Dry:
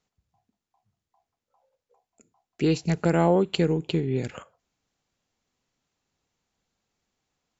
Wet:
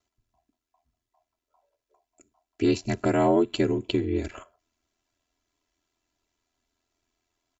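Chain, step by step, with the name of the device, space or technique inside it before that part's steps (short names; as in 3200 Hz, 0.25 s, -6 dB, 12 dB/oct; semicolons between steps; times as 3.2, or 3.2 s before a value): ring-modulated robot voice (ring modulator 42 Hz; comb 3 ms, depth 100%)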